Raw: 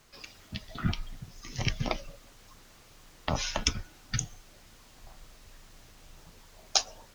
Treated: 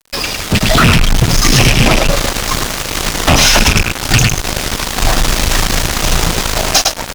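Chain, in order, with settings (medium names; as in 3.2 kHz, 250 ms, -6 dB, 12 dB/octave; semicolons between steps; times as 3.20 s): rattle on loud lows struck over -33 dBFS, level -17 dBFS; compression 6:1, threshold -38 dBFS, peak gain reduction 18.5 dB; on a send: delay 105 ms -9 dB; on the sum: fuzz box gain 53 dB, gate -53 dBFS; level rider; loudspeaker Doppler distortion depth 0.16 ms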